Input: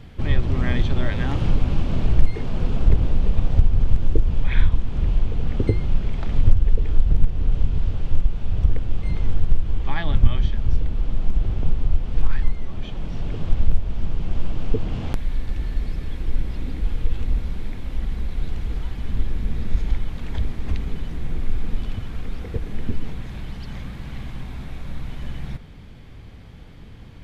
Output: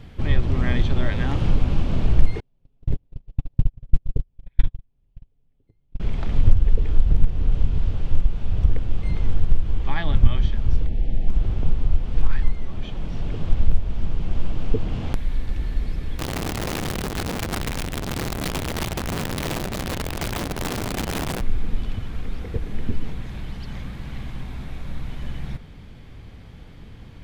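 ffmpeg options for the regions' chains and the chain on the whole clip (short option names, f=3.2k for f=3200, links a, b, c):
-filter_complex "[0:a]asettb=1/sr,asplit=3[a][b][c];[a]atrim=end=2.404[d];[b]atrim=start=2.4:end=6,asetpts=PTS-STARTPTS,afade=t=in:d=0.004:c=qsin,afade=t=out:st=3.596:d=0.004:c=qsin,agate=range=-46dB:threshold=-9dB:ratio=16:release=100:detection=peak,equalizer=f=1.3k:t=o:w=0.85:g=-6,aecho=1:1:7.2:0.39,atrim=end_sample=158760[e];[c]atrim=start=5.996[f];[d][e]acrossfade=d=0.004:c1=hsin:c2=qsin[g];[g][f]acrossfade=d=0.004:c1=qsin:c2=hsin,asettb=1/sr,asplit=3[h][i][j];[h]atrim=end=10.864[k];[i]atrim=start=10.86:end=11.28,asetpts=PTS-STARTPTS,afade=t=in:d=0.004:c=qsin,afade=t=out:st=0.416:d=0.004:c=qsin,asuperstop=centerf=1200:order=8:qfactor=1.4,aemphasis=mode=reproduction:type=cd[l];[j]atrim=start=11.276[m];[k][l]acrossfade=d=0.004:c1=hsin:c2=qsin[n];[n][m]acrossfade=d=0.004:c1=qsin:c2=hsin,asettb=1/sr,asplit=3[o][p][q];[o]atrim=end=16.194[r];[p]atrim=start=16.19:end=21.41,asetpts=PTS-STARTPTS,afade=t=in:d=0.004:c=qsin,afade=t=out:st=5.216:d=0.004:c=qsin,equalizer=f=710:t=o:w=0.28:g=9,acompressor=mode=upward:threshold=-19dB:ratio=2.5:attack=3.2:release=140:knee=2.83:detection=peak,aeval=exprs='(mod(12.6*val(0)+1,2)-1)/12.6':c=same[s];[q]atrim=start=21.406[t];[r][s]acrossfade=d=0.004:c1=hsin:c2=qsin[u];[u][t]acrossfade=d=0.004:c1=qsin:c2=hsin"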